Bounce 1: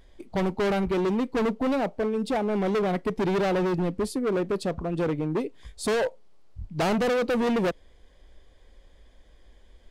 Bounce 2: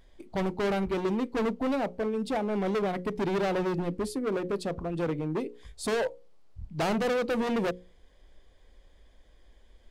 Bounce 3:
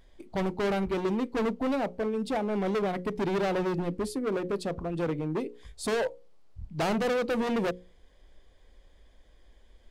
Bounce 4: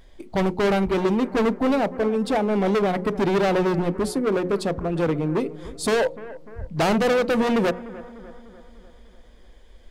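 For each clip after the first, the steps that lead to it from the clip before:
hum notches 60/120/180/240/300/360/420/480/540 Hz; trim -3 dB
no audible change
bucket-brigade echo 298 ms, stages 4096, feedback 55%, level -17 dB; trim +7.5 dB

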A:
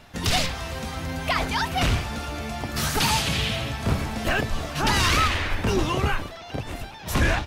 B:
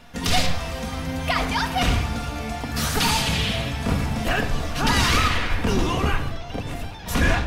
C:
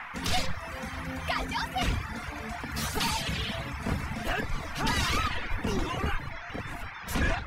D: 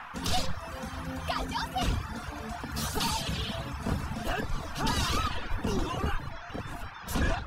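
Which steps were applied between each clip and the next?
simulated room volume 2900 m³, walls furnished, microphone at 1.8 m
band noise 790–2300 Hz -33 dBFS; reverb removal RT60 0.82 s; trim -7 dB
peaking EQ 2.1 kHz -11 dB 0.44 oct

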